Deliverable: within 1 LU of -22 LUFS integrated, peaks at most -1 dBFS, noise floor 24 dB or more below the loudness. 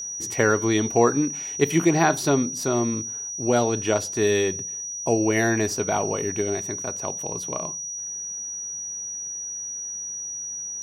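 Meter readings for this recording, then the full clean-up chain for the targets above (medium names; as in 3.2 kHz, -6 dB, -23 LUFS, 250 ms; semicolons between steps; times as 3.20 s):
tick rate 18 per s; steady tone 5.8 kHz; tone level -30 dBFS; loudness -24.0 LUFS; peak level -4.5 dBFS; loudness target -22.0 LUFS
-> de-click; band-stop 5.8 kHz, Q 30; trim +2 dB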